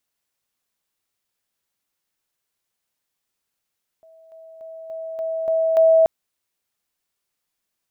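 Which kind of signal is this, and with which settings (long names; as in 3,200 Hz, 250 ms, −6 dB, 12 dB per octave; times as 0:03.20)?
level staircase 649 Hz −46.5 dBFS, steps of 6 dB, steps 7, 0.29 s 0.00 s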